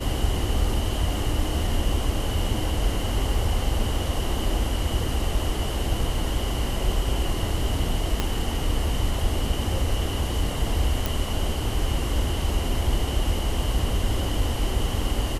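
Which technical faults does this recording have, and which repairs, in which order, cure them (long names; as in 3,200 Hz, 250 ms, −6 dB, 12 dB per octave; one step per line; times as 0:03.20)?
0:08.20: click −9 dBFS
0:11.06: click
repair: click removal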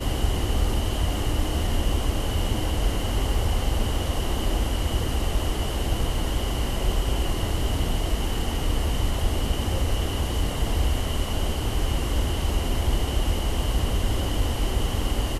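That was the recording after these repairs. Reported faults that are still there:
0:08.20: click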